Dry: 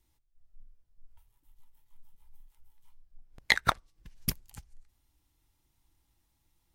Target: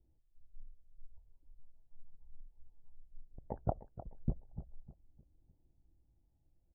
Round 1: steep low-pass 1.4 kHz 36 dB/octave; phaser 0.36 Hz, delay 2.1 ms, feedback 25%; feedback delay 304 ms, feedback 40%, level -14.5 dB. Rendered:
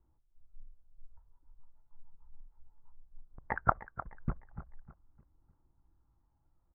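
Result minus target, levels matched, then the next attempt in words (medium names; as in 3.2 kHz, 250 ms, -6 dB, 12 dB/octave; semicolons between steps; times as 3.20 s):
1 kHz band +5.5 dB
steep low-pass 690 Hz 36 dB/octave; phaser 0.36 Hz, delay 2.1 ms, feedback 25%; feedback delay 304 ms, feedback 40%, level -14.5 dB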